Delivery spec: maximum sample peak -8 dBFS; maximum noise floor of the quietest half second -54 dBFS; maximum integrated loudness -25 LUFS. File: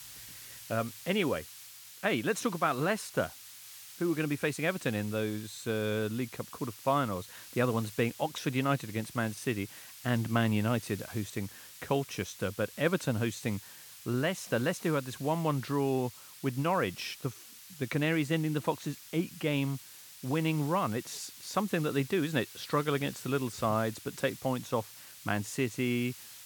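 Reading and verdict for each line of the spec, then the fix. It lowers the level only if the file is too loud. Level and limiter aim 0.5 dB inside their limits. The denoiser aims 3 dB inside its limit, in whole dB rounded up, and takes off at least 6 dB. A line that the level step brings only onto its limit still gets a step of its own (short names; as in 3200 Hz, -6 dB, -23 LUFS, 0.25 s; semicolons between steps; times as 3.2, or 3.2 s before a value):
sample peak -13.5 dBFS: OK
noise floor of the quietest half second -50 dBFS: fail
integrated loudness -32.5 LUFS: OK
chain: denoiser 7 dB, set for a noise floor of -50 dBFS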